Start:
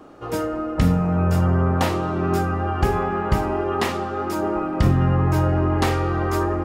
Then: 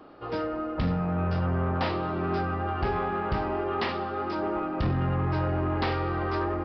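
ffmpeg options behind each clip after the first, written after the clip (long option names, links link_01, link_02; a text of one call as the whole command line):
ffmpeg -i in.wav -af "lowshelf=frequency=420:gain=-4,aresample=11025,asoftclip=type=tanh:threshold=-17dB,aresample=44100,volume=-3dB" out.wav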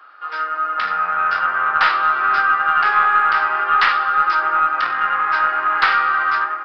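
ffmpeg -i in.wav -af "highpass=frequency=1400:width_type=q:width=4.8,dynaudnorm=framelen=250:gausssize=5:maxgain=8dB,aeval=exprs='0.668*(cos(1*acos(clip(val(0)/0.668,-1,1)))-cos(1*PI/2))+0.0473*(cos(2*acos(clip(val(0)/0.668,-1,1)))-cos(2*PI/2))+0.00531*(cos(5*acos(clip(val(0)/0.668,-1,1)))-cos(5*PI/2))':channel_layout=same,volume=3dB" out.wav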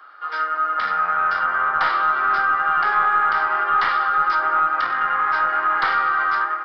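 ffmpeg -i in.wav -filter_complex "[0:a]bandreject=frequency=2600:width=7.2,acrossover=split=220|1100[link_01][link_02][link_03];[link_03]alimiter=limit=-16dB:level=0:latency=1:release=86[link_04];[link_01][link_02][link_04]amix=inputs=3:normalize=0" out.wav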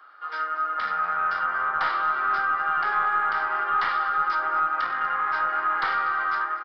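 ffmpeg -i in.wav -af "aecho=1:1:243:0.119,volume=-5.5dB" out.wav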